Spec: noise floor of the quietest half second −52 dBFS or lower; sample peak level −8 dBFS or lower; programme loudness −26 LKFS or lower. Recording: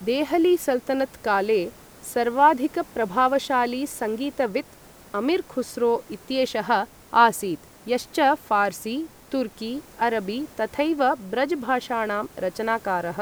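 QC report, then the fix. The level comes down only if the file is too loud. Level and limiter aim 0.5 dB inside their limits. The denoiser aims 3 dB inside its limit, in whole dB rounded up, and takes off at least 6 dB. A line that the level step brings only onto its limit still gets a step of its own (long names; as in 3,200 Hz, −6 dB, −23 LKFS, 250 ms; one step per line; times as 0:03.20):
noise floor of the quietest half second −48 dBFS: out of spec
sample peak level −4.0 dBFS: out of spec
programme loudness −24.0 LKFS: out of spec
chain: broadband denoise 6 dB, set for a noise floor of −48 dBFS
level −2.5 dB
brickwall limiter −8.5 dBFS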